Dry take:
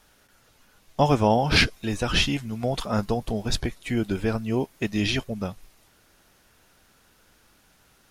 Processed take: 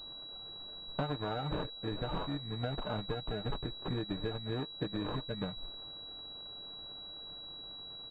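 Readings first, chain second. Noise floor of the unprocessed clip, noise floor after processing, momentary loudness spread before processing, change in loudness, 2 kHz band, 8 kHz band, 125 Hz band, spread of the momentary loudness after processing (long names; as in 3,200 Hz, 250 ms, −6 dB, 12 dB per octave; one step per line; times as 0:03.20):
−61 dBFS, −47 dBFS, 9 LU, −14.5 dB, −19.0 dB, below −35 dB, −11.0 dB, 8 LU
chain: comb filter 6.6 ms, depth 64%
downward compressor 10 to 1, threshold −34 dBFS, peak gain reduction 21.5 dB
decimation without filtering 21×
far-end echo of a speakerphone 390 ms, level −30 dB
switching amplifier with a slow clock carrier 3,900 Hz
level +1 dB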